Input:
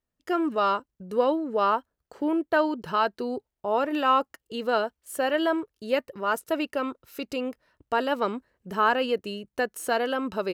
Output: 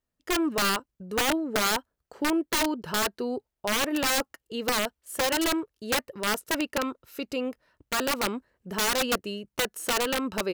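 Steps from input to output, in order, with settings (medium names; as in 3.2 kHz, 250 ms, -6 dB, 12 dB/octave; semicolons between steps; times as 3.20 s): integer overflow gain 19 dB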